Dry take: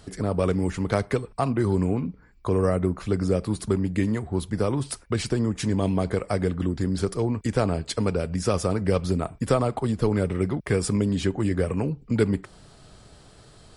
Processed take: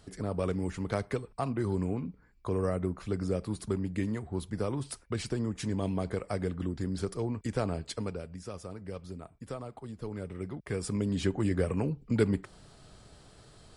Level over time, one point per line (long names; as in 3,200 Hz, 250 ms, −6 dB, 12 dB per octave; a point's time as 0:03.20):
0:07.87 −8 dB
0:08.47 −18 dB
0:09.81 −18 dB
0:10.68 −11.5 dB
0:11.27 −4.5 dB